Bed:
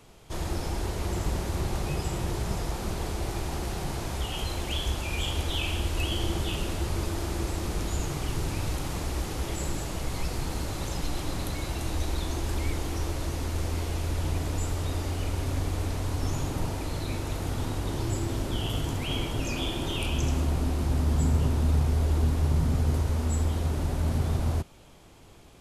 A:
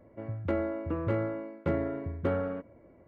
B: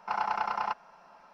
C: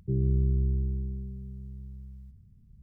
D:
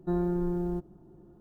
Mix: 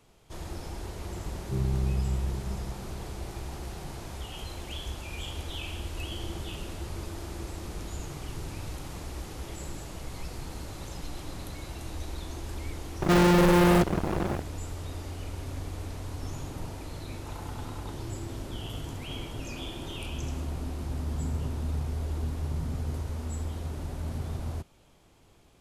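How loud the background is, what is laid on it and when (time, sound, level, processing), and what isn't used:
bed -7.5 dB
1.43 add C -2.5 dB
13.02 add D -5.5 dB + fuzz box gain 55 dB, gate -52 dBFS
17.18 add B -17.5 dB
not used: A

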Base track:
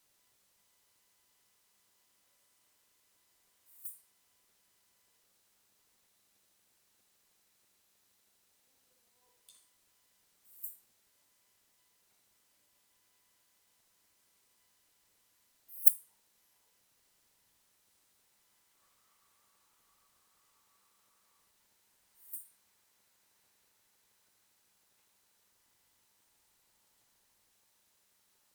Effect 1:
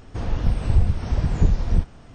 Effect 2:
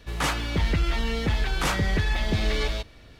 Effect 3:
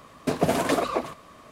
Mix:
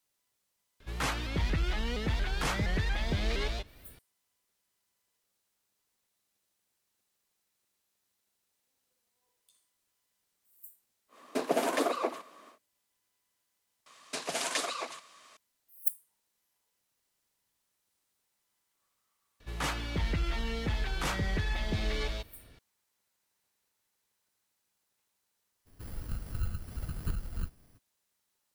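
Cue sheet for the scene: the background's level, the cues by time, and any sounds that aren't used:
base track -7.5 dB
0.8 add 2 -6.5 dB + shaped vibrato saw up 4.3 Hz, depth 160 cents
11.08 add 3 -5 dB, fades 0.10 s + HPF 260 Hz 24 dB/oct
13.86 add 3 -9.5 dB + weighting filter ITU-R 468
19.4 add 2 -7.5 dB
25.65 add 1 -16.5 dB, fades 0.02 s + FFT order left unsorted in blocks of 32 samples

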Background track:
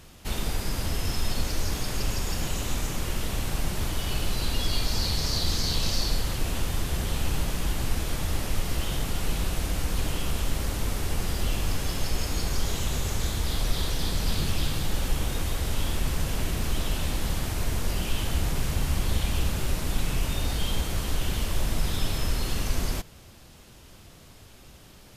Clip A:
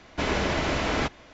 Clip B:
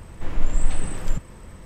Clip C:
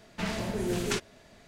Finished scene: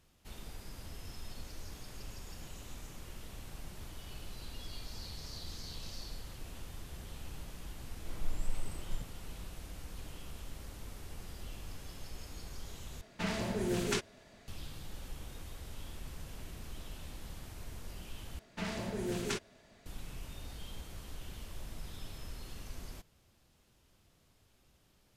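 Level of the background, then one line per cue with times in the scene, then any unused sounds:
background track -18.5 dB
7.84 add B -15.5 dB + Butterworth band-stop 1700 Hz, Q 7.3
13.01 replace with C -3 dB
18.39 replace with C -6 dB
not used: A

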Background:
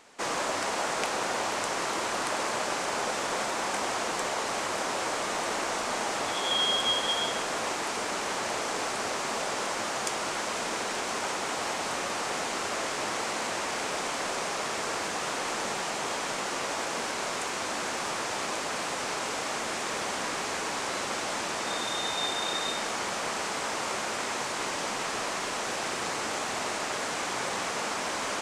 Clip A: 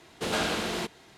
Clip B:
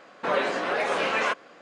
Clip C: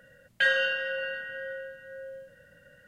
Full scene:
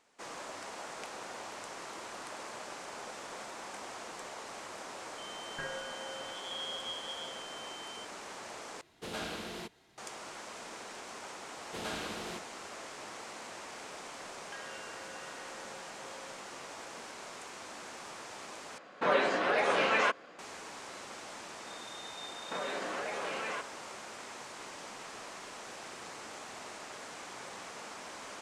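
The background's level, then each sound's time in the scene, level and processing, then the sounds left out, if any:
background -14 dB
5.18 add C -12.5 dB + pulse-width modulation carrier 3100 Hz
8.81 replace with A -11 dB
11.52 add A -11 dB
14.12 add C -8.5 dB + compressor 3:1, threshold -43 dBFS
18.78 replace with B -2.5 dB
22.28 add B -5 dB + limiter -24.5 dBFS

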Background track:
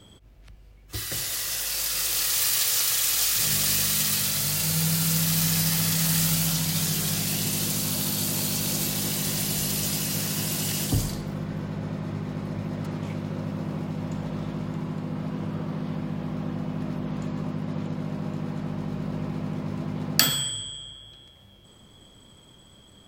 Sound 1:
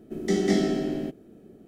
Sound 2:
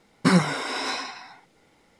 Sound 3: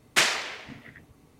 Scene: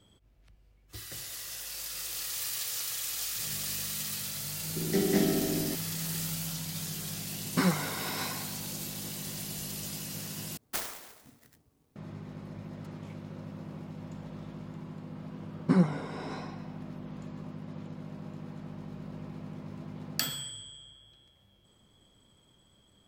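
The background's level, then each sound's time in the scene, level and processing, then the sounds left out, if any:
background track -11.5 dB
4.65 add 1 -4 dB + Doppler distortion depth 0.14 ms
7.32 add 2 -8 dB
10.57 replace with 3 -13 dB + clock jitter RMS 0.12 ms
15.44 add 2 -12.5 dB + tilt shelf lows +9 dB, about 1100 Hz

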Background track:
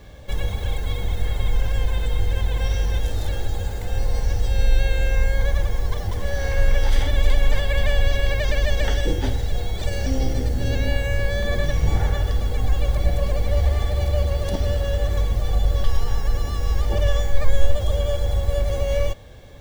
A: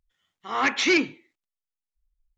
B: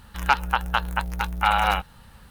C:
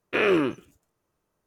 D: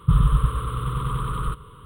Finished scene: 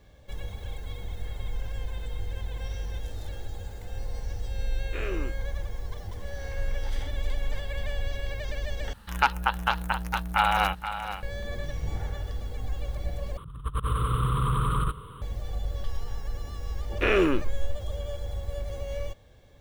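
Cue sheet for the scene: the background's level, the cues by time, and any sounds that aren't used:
background track -12 dB
4.8 add C -14 dB
8.93 replace with B -2.5 dB + echo 0.477 s -10.5 dB
13.37 replace with D -2 dB + negative-ratio compressor -24 dBFS, ratio -0.5
16.88 add C -1 dB
not used: A

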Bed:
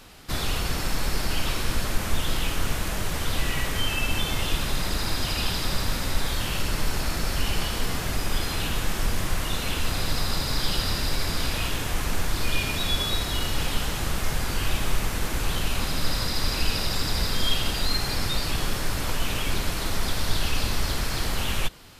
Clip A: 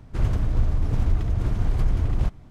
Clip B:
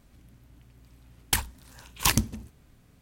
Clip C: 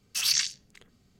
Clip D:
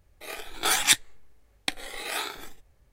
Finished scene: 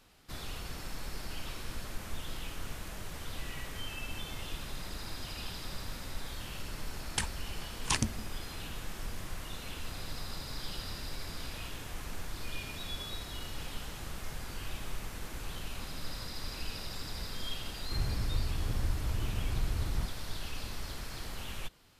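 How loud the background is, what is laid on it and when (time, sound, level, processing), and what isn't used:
bed -14.5 dB
5.85 add B -7 dB + downsampling 22050 Hz
17.77 add A -11 dB
not used: C, D

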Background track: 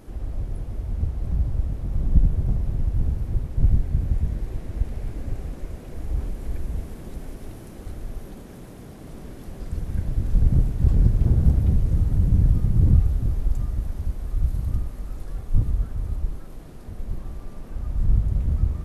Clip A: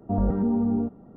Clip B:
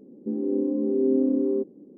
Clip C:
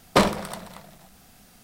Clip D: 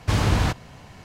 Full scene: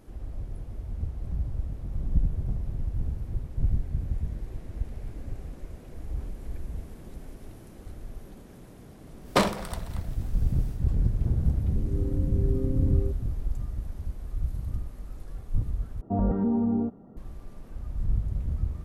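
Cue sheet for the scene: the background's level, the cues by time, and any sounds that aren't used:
background track -7 dB
9.2 add C -4 dB, fades 0.10 s
11.49 add B -11 dB
16.01 replace with A -1.5 dB
not used: D

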